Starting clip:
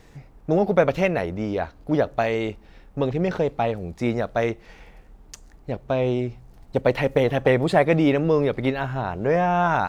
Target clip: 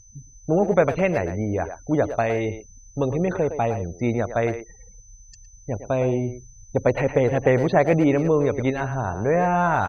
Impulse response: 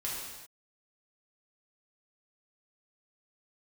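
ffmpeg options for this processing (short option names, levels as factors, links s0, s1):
-filter_complex "[0:a]asettb=1/sr,asplit=3[s0][s1][s2];[s0]atrim=end=6.174[s3];[s1]atrim=start=6.17:end=8.52,asetpts=PTS-STARTPTS,afade=t=in:d=0.004:c=qsin,afade=t=out:st=2.346:d=0.004:c=qsin,highshelf=f=5800:g=-10.5[s4];[s2]atrim=start=8.516[s5];[s3][s4]acrossfade=d=0.004:c1=hsin:c2=qsin[s6];[s6][s5]acrossfade=d=0.004:c1=qsin:c2=hsin,afftfilt=real='re*gte(hypot(re,im),0.0158)':imag='im*gte(hypot(re,im),0.0158)':win_size=1024:overlap=0.75,asplit=2[s7][s8];[s8]adelay=110,highpass=300,lowpass=3400,asoftclip=type=hard:threshold=0.188,volume=0.355[s9];[s7][s9]amix=inputs=2:normalize=0,aeval=exprs='val(0)+0.0112*sin(2*PI*6100*n/s)':c=same,equalizer=f=100:t=o:w=0.33:g=8,equalizer=f=3150:t=o:w=0.33:g=-8,equalizer=f=6300:t=o:w=0.33:g=-12"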